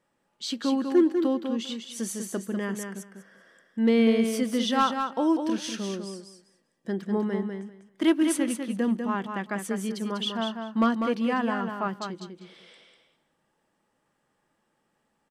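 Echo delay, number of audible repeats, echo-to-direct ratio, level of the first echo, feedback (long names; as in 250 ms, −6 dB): 197 ms, 2, −6.0 dB, −6.0 dB, 17%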